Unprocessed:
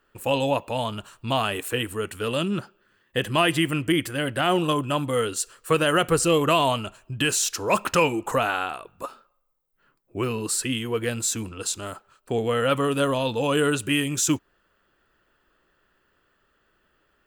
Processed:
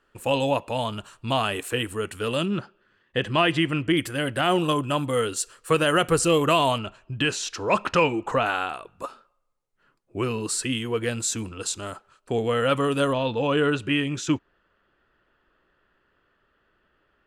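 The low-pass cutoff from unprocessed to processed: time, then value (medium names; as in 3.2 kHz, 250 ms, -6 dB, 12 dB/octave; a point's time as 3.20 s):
11 kHz
from 2.46 s 4.8 kHz
from 3.97 s 12 kHz
from 6.78 s 4.5 kHz
from 8.46 s 9.2 kHz
from 13.13 s 3.6 kHz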